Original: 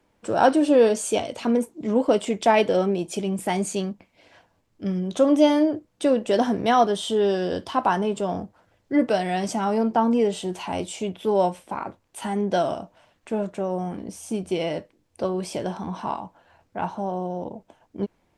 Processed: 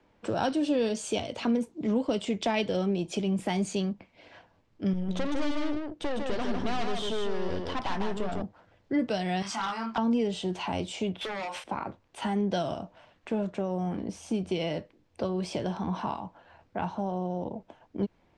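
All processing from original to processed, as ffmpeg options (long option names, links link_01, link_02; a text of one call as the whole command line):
ffmpeg -i in.wav -filter_complex "[0:a]asettb=1/sr,asplit=3[link_01][link_02][link_03];[link_01]atrim=end=4.934[link_04];[link_02]atrim=start=4.93:end=8.42,asetpts=PTS-STARTPTS,afade=type=in:duration=0.004:curve=qsin,afade=type=out:start_time=3.486:duration=0.004:curve=qsin,aeval=exprs='(tanh(22.4*val(0)+0.75)-tanh(0.75))/22.4':channel_layout=same,aecho=1:1:151:0.596,atrim=end_sample=153909[link_05];[link_03]atrim=start=8.416[link_06];[link_04][link_05]acrossfade=duration=0.004:curve1=hsin:curve2=qsin[link_07];[link_07][link_06]acrossfade=duration=0.004:curve1=qsin:curve2=hsin,asettb=1/sr,asplit=3[link_08][link_09][link_10];[link_08]atrim=end=9.424[link_11];[link_09]atrim=start=9.42:end=9.98,asetpts=PTS-STARTPTS,afade=type=in:duration=0.004:curve=qsin,afade=type=out:start_time=0.556:duration=0.004:curve=qsin,lowshelf=frequency=780:width_type=q:width=3:gain=-14,asplit=2[link_12][link_13];[link_13]adelay=26,volume=-2dB[link_14];[link_12][link_14]amix=inputs=2:normalize=0,atrim=end_sample=24696,asoftclip=type=hard:threshold=-23dB[link_15];[link_10]atrim=start=9.976[link_16];[link_11][link_15]acrossfade=duration=0.004:curve1=hsin:curve2=qsin[link_17];[link_17][link_16]acrossfade=duration=0.004:curve1=qsin:curve2=hsin,asettb=1/sr,asplit=3[link_18][link_19][link_20];[link_18]atrim=end=11.214[link_21];[link_19]atrim=start=11.21:end=11.64,asetpts=PTS-STARTPTS,afade=type=in:duration=0.004:curve=qsin,afade=type=out:start_time=0.426:duration=0.004:curve=qsin,highpass=1000,acompressor=threshold=-38dB:ratio=10:attack=3.2:release=140:knee=1:detection=peak,aeval=exprs='0.0266*sin(PI/2*3.16*val(0)/0.0266)':channel_layout=same[link_22];[link_20]atrim=start=11.636[link_23];[link_21][link_22]acrossfade=duration=0.004:curve1=hsin:curve2=qsin[link_24];[link_24][link_23]acrossfade=duration=0.004:curve1=qsin:curve2=hsin,lowpass=4600,acrossover=split=190|3000[link_25][link_26][link_27];[link_26]acompressor=threshold=-33dB:ratio=3[link_28];[link_25][link_28][link_27]amix=inputs=3:normalize=0,volume=1.5dB" out.wav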